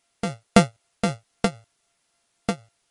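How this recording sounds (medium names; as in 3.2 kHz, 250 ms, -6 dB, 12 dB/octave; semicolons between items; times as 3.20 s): a buzz of ramps at a fixed pitch in blocks of 64 samples; tremolo triangle 3.8 Hz, depth 85%; a quantiser's noise floor 12-bit, dither triangular; MP3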